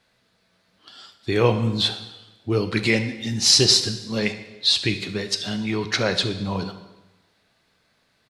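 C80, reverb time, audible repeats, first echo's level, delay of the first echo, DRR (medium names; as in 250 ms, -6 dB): 13.0 dB, 1.1 s, 1, -17.5 dB, 71 ms, 8.5 dB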